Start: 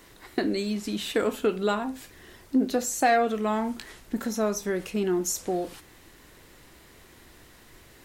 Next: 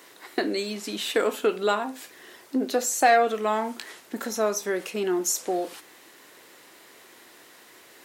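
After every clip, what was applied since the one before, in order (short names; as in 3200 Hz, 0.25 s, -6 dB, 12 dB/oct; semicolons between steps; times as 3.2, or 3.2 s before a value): HPF 360 Hz 12 dB/oct; gain +3.5 dB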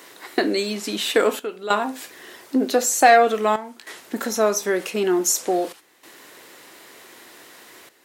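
step gate "xxxxxxxxx..xxx" 97 bpm -12 dB; gain +5.5 dB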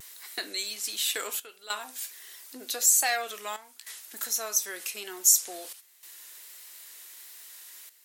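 differentiator; vibrato 1.4 Hz 53 cents; gain +1.5 dB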